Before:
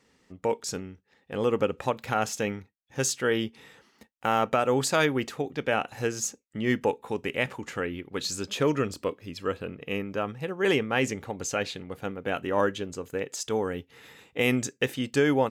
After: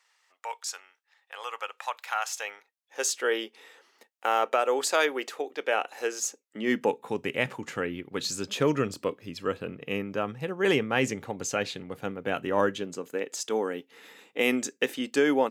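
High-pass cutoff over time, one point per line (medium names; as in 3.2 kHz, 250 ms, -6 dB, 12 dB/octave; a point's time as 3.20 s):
high-pass 24 dB/octave
2.21 s 840 Hz
3.16 s 370 Hz
6.26 s 370 Hz
7.21 s 100 Hz
12.65 s 100 Hz
13.19 s 220 Hz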